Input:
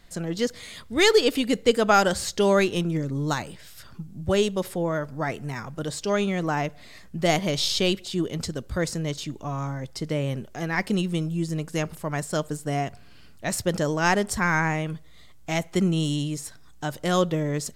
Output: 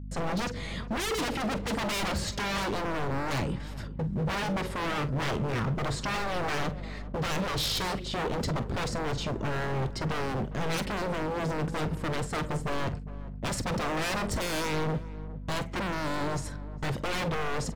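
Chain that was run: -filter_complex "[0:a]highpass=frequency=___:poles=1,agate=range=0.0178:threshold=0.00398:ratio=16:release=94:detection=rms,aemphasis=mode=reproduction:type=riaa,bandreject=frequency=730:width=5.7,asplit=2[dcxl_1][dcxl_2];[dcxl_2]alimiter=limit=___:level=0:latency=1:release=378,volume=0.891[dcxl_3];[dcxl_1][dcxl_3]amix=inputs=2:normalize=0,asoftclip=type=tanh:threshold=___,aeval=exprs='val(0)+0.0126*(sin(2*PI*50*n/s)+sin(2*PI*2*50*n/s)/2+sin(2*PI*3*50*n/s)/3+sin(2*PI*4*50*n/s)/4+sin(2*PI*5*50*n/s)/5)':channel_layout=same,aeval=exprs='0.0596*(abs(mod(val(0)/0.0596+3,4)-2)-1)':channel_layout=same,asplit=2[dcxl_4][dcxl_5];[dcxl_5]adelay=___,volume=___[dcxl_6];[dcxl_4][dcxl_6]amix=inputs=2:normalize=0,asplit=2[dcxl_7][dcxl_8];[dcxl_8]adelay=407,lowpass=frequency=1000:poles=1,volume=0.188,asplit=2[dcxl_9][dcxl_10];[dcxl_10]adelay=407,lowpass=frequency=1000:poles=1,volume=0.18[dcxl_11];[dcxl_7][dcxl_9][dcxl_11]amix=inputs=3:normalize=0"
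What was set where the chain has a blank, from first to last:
180, 0.188, 0.15, 45, 0.2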